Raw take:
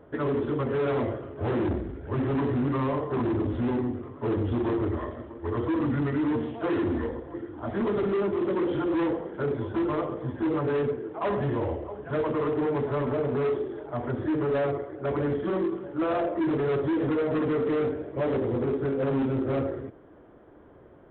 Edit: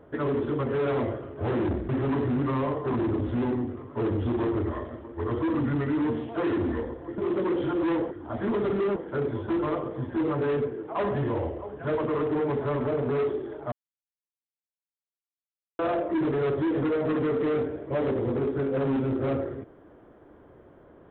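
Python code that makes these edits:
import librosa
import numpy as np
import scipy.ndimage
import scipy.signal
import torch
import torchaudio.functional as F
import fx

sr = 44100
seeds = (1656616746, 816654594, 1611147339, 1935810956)

y = fx.edit(x, sr, fx.cut(start_s=1.89, length_s=0.26),
    fx.move(start_s=7.44, length_s=0.85, to_s=9.22),
    fx.silence(start_s=13.98, length_s=2.07), tone=tone)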